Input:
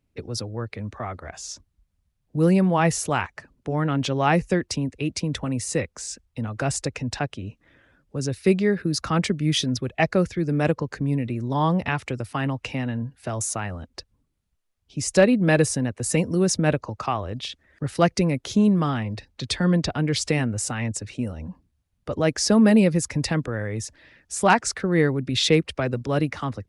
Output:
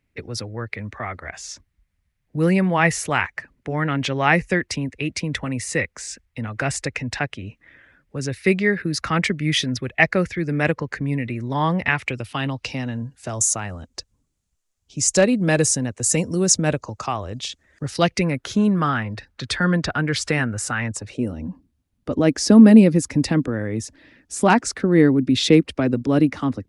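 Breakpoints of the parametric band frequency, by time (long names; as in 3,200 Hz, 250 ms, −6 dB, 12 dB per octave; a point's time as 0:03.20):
parametric band +11.5 dB 0.82 octaves
0:11.94 2,000 Hz
0:12.99 7,000 Hz
0:17.85 7,000 Hz
0:18.30 1,500 Hz
0:20.89 1,500 Hz
0:21.30 270 Hz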